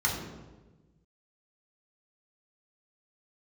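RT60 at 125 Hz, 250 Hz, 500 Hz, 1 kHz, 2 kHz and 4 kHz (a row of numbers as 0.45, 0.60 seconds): 1.8, 1.5, 1.4, 1.1, 0.90, 0.80 seconds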